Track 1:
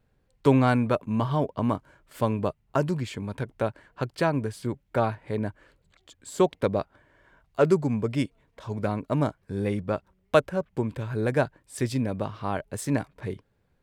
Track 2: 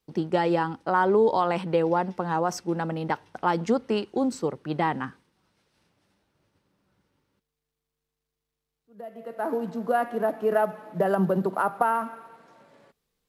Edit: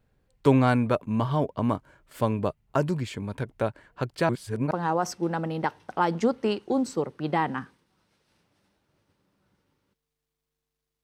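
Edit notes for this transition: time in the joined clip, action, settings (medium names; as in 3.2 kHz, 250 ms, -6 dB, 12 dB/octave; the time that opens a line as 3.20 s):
track 1
4.29–4.71 s: reverse
4.71 s: go over to track 2 from 2.17 s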